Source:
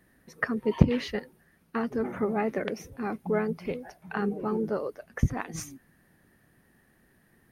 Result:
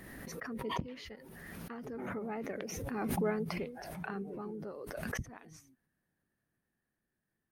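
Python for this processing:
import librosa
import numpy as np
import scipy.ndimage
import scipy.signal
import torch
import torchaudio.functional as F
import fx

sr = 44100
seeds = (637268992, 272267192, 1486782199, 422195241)

y = fx.doppler_pass(x, sr, speed_mps=10, closest_m=5.2, pass_at_s=3.26)
y = fx.pre_swell(y, sr, db_per_s=23.0)
y = y * 10.0 ** (-6.0 / 20.0)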